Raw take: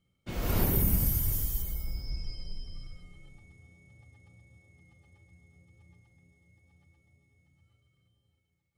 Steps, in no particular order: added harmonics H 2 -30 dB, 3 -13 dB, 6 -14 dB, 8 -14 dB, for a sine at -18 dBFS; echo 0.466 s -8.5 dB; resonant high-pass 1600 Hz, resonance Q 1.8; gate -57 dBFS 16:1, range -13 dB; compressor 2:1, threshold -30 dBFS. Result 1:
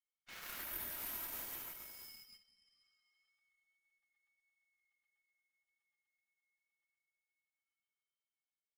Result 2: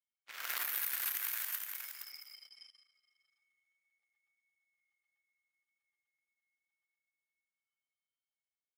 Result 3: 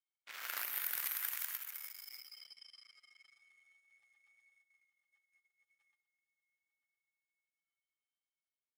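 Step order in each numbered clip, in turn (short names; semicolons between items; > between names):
echo > compressor > resonant high-pass > added harmonics > gate; added harmonics > echo > compressor > resonant high-pass > gate; compressor > echo > gate > added harmonics > resonant high-pass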